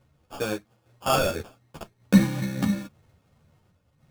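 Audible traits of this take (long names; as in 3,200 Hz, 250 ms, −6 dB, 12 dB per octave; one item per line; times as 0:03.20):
sample-and-hold tremolo
aliases and images of a low sample rate 2,000 Hz, jitter 0%
a shimmering, thickened sound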